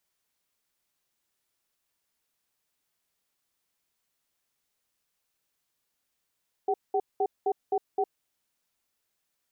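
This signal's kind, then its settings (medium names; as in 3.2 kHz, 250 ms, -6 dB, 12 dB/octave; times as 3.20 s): cadence 404 Hz, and 760 Hz, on 0.06 s, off 0.20 s, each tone -25.5 dBFS 1.51 s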